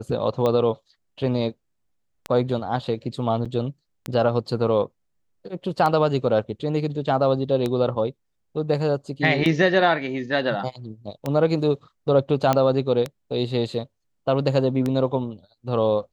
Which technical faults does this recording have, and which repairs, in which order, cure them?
tick 33 1/3 rpm -12 dBFS
3.45–3.46 gap 6 ms
12.53 pop -7 dBFS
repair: de-click; interpolate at 3.45, 6 ms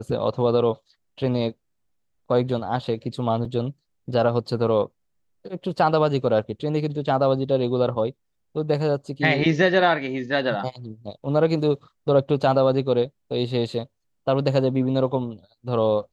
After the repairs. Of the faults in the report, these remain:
none

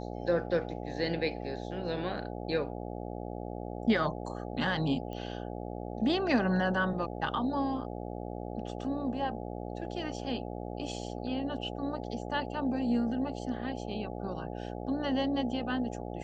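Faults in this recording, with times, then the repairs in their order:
buzz 60 Hz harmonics 14 -39 dBFS
5.13 pop -29 dBFS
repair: de-click; de-hum 60 Hz, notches 14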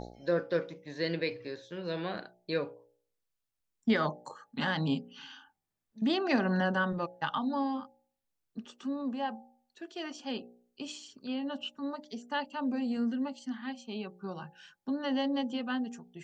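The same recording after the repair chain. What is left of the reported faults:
none

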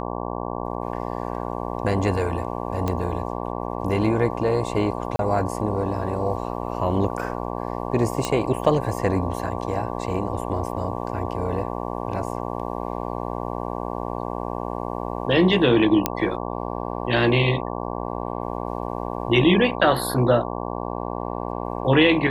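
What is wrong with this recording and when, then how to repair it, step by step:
buzz 60 Hz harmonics 19 -29 dBFS
2.88 pop -12 dBFS
5.16–5.19 gap 32 ms
8.25 pop -9 dBFS
16.06 pop -3 dBFS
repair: de-click; de-hum 60 Hz, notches 19; interpolate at 5.16, 32 ms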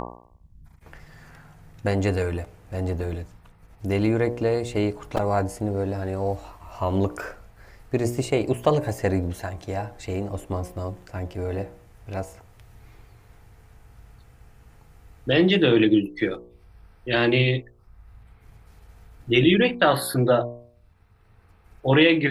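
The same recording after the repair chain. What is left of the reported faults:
none

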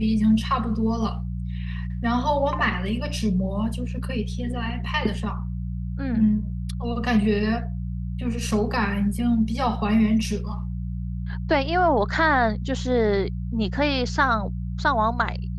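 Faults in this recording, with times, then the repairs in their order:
hum 60 Hz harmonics 3 -29 dBFS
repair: de-hum 60 Hz, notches 3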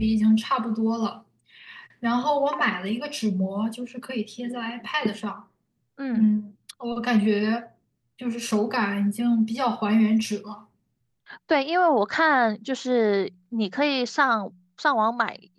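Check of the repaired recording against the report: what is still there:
none

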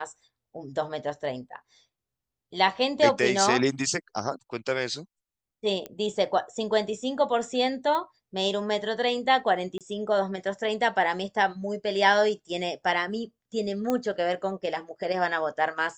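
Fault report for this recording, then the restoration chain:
5.86 pop -20 dBFS
7.95 pop -18 dBFS
9.78–9.81 gap 27 ms
13.9 pop -14 dBFS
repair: de-click; interpolate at 9.78, 27 ms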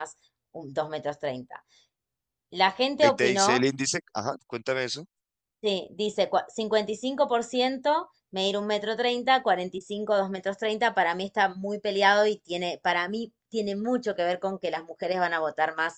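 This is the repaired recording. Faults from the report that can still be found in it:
none

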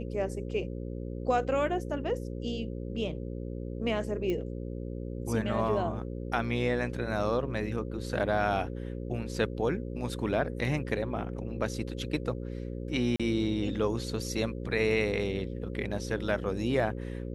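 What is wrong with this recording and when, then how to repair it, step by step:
buzz 60 Hz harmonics 9 -37 dBFS
4.3 pop -21 dBFS
13.16–13.2 gap 36 ms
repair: de-click; de-hum 60 Hz, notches 9; interpolate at 13.16, 36 ms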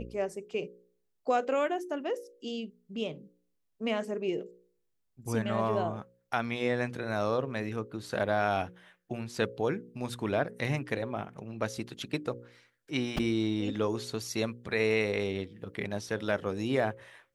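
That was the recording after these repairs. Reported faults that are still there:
none

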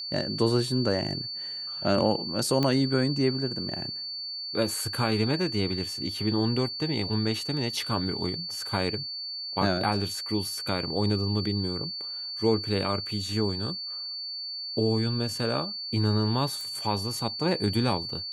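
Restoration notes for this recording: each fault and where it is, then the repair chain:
tone 4500 Hz -33 dBFS
2.63 pop -13 dBFS
16.61 pop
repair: de-click; notch 4500 Hz, Q 30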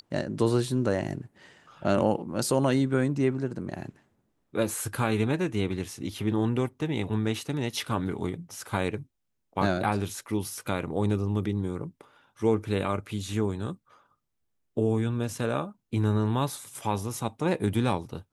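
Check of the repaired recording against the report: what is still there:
none

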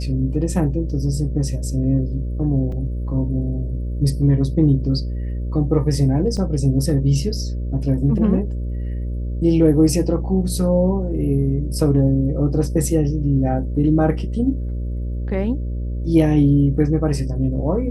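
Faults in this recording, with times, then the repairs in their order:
buzz 60 Hz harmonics 10 -24 dBFS
2.72 gap 3.3 ms
6.37–6.38 gap 5.3 ms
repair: de-hum 60 Hz, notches 10; interpolate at 2.72, 3.3 ms; interpolate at 6.37, 5.3 ms

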